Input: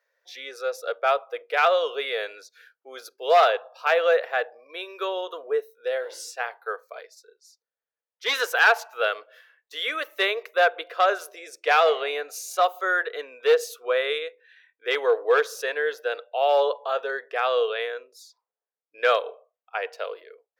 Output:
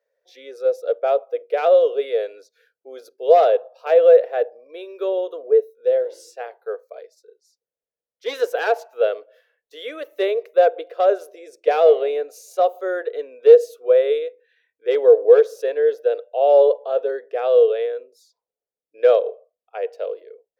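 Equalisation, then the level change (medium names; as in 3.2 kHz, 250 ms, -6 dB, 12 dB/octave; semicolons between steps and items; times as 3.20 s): dynamic bell 510 Hz, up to +4 dB, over -30 dBFS, Q 1.1; resonant low shelf 760 Hz +11.5 dB, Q 1.5; -8.0 dB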